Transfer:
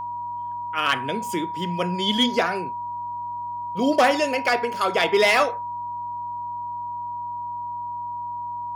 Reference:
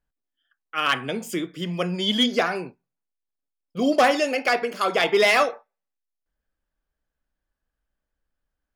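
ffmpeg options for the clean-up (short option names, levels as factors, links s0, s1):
-af "bandreject=f=104:t=h:w=4,bandreject=f=208:t=h:w=4,bandreject=f=312:t=h:w=4,bandreject=f=960:w=30"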